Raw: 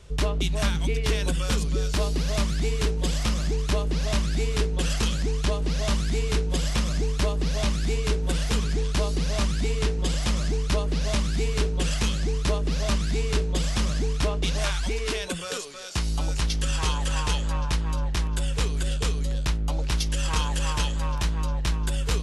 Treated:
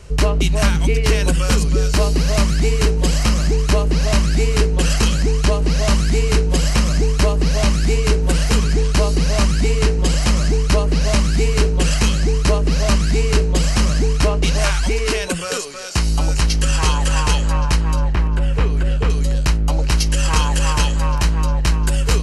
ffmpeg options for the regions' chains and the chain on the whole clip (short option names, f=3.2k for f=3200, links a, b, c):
-filter_complex "[0:a]asettb=1/sr,asplit=3[a][b][c];[a]atrim=end=18.134[d];[b]atrim=start=18.13:end=19.1,asetpts=PTS-STARTPTS,afade=t=in:d=0.004:c=qsin,afade=t=out:st=0.966:d=0.004:c=qsin,acrossover=split=3600[e][f];[f]acompressor=threshold=-48dB:ratio=4:attack=1:release=60[g];[e][g]amix=inputs=2:normalize=0,highshelf=f=3.2k:g=-8.5[h];[c]atrim=start=19.096[i];[d][h]acrossfade=d=0.004:c1=hsin:c2=qsin[j];[j][i]acrossfade=d=0.004:c1=qsin:c2=hsin,bandreject=f=3.5k:w=5.6,acontrast=44,volume=3.5dB"